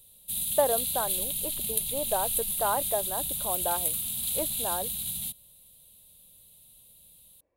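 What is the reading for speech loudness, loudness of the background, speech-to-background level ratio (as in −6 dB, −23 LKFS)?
−33.0 LKFS, −28.0 LKFS, −5.0 dB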